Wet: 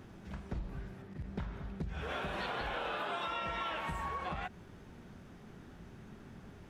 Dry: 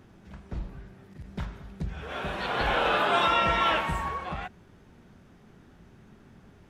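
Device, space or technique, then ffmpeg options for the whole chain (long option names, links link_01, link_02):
serial compression, peaks first: -filter_complex "[0:a]acompressor=threshold=-32dB:ratio=6,acompressor=threshold=-38dB:ratio=2.5,asettb=1/sr,asplit=3[link_01][link_02][link_03];[link_01]atrim=end=1.024[link_04];[link_02]atrim=start=1.02:end=1.83,asetpts=PTS-STARTPTS,afade=type=in:duration=0.004:curve=qsin,afade=type=out:start_time=0.806:duration=0.004:curve=qsin,highshelf=frequency=4400:gain=-9.5[link_05];[link_03]atrim=start=1.826[link_06];[link_04][link_05]acrossfade=duration=0.004:curve1=hsin:curve2=qsin[link_07];[link_07][link_06]acrossfade=duration=0.004:curve1=qsin:curve2=hsin,volume=1.5dB"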